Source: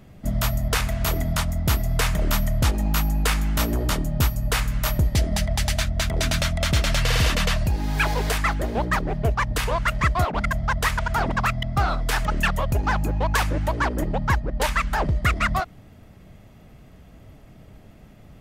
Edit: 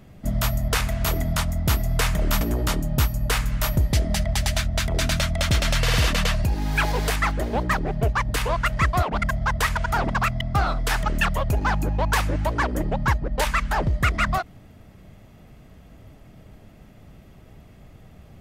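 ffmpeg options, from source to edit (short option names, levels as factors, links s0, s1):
-filter_complex "[0:a]asplit=2[s0][s1];[s0]atrim=end=2.412[s2];[s1]atrim=start=3.628[s3];[s2][s3]acrossfade=d=0.004:c1=hsin:c2=hsin"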